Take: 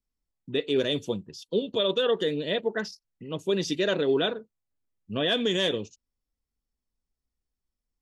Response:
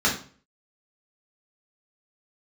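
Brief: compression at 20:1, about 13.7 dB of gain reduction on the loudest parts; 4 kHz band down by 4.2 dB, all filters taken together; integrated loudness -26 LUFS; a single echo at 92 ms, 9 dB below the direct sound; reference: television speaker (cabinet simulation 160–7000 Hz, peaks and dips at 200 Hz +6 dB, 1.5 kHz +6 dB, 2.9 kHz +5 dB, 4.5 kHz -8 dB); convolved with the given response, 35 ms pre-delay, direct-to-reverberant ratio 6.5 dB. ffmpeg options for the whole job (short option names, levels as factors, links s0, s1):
-filter_complex "[0:a]equalizer=f=4000:t=o:g=-6.5,acompressor=threshold=0.02:ratio=20,aecho=1:1:92:0.355,asplit=2[s0][s1];[1:a]atrim=start_sample=2205,adelay=35[s2];[s1][s2]afir=irnorm=-1:irlink=0,volume=0.0794[s3];[s0][s3]amix=inputs=2:normalize=0,highpass=f=160:w=0.5412,highpass=f=160:w=1.3066,equalizer=f=200:t=q:w=4:g=6,equalizer=f=1500:t=q:w=4:g=6,equalizer=f=2900:t=q:w=4:g=5,equalizer=f=4500:t=q:w=4:g=-8,lowpass=f=7000:w=0.5412,lowpass=f=7000:w=1.3066,volume=3.55"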